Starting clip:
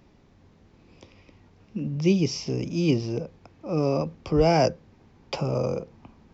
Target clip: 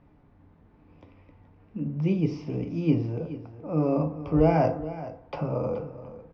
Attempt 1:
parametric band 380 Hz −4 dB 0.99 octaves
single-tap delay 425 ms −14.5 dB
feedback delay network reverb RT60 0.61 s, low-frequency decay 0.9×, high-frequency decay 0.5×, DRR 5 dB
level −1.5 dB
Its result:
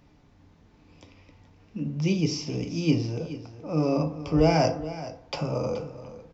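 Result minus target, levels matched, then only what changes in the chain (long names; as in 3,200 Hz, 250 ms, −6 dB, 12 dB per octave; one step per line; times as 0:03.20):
2,000 Hz band +5.0 dB
add first: low-pass filter 1,700 Hz 12 dB per octave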